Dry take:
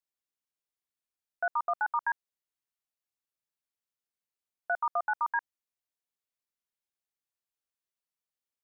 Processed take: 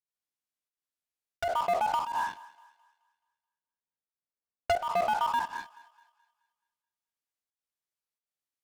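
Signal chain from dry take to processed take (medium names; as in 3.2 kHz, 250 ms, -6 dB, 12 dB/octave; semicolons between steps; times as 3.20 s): spectral sustain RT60 0.40 s; 1.63–4.76 s: low-pass 1.1 kHz 12 dB/octave; low-pass that closes with the level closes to 400 Hz, closed at -29 dBFS; in parallel at +2.5 dB: compression, threshold -50 dBFS, peak gain reduction 19 dB; on the sum: waveshaping leveller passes 5; volume shaper 88 bpm, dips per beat 1, -14 dB, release 251 ms; on a send: thinning echo 214 ms, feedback 44%, high-pass 570 Hz, level -19 dB; on the sum: trim -1.5 dB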